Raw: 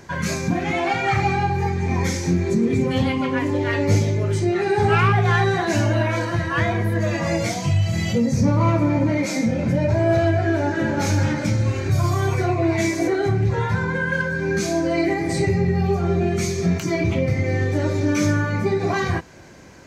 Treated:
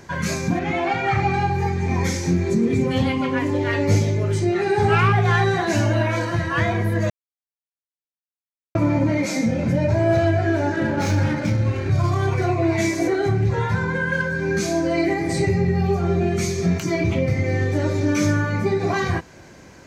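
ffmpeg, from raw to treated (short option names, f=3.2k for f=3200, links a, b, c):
-filter_complex "[0:a]asettb=1/sr,asplit=3[a][b][c];[a]atrim=end=0.594[d];[b]atrim=start=0.59:end=1.34,asetpts=PTS-STARTPTS,afade=t=in:d=0.004:c=qsin,afade=t=out:st=0.746:d=0.004:c=qsin,lowpass=f=3.3k:p=1[e];[c]atrim=start=1.336[f];[d][e]acrossfade=d=0.004:c1=hsin:c2=qsin[g];[g][f]acrossfade=d=0.004:c1=qsin:c2=hsin,asettb=1/sr,asplit=3[h][i][j];[h]atrim=end=10.764[k];[i]atrim=start=10.76:end=12.42,asetpts=PTS-STARTPTS,afade=t=in:d=0.004:c=qsin,afade=t=out:st=1.656:d=0.004:c=qsin,adynamicsmooth=sensitivity=4.5:basefreq=3.1k[l];[j]atrim=start=12.416[m];[k][l]acrossfade=d=0.004:c1=hsin:c2=qsin[n];[n][m]acrossfade=d=0.004:c1=qsin:c2=hsin,asplit=3[o][p][q];[o]atrim=end=7.1,asetpts=PTS-STARTPTS,afade=t=out:st=7.096:d=0.004:c=hsin[r];[p]atrim=start=7.1:end=8.75,asetpts=PTS-STARTPTS,volume=0[s];[q]atrim=start=8.75,asetpts=PTS-STARTPTS,afade=t=in:d=0.004:c=hsin[t];[r][s][t]concat=n=3:v=0:a=1"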